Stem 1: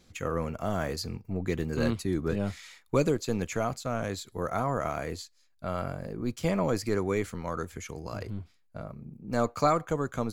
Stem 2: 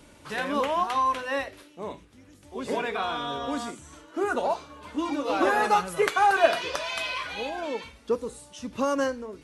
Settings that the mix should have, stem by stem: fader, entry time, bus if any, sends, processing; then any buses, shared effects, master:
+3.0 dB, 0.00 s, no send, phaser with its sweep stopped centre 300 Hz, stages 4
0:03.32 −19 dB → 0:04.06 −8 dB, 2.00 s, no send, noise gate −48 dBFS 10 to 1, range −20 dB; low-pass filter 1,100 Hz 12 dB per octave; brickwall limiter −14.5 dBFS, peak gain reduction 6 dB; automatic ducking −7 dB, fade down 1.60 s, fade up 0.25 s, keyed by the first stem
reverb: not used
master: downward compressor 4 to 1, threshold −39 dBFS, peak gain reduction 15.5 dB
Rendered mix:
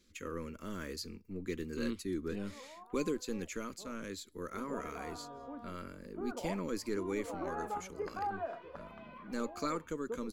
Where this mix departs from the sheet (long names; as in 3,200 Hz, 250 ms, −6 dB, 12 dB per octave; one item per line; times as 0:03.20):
stem 1 +3.0 dB → −6.0 dB
master: missing downward compressor 4 to 1, threshold −39 dBFS, peak gain reduction 15.5 dB